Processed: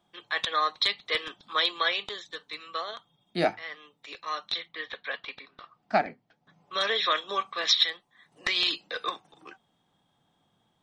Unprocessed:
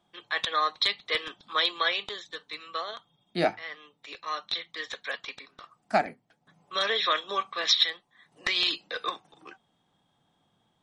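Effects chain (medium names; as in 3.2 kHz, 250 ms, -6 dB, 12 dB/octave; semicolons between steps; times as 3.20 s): 4.68–6.77 s: low-pass 3.4 kHz -> 6.7 kHz 24 dB/octave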